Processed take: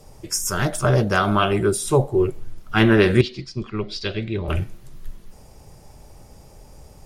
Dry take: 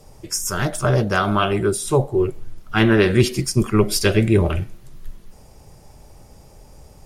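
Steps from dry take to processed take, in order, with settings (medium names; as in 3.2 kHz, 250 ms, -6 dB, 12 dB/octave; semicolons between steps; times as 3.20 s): 3.21–4.48 s: four-pole ladder low-pass 4.5 kHz, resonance 60%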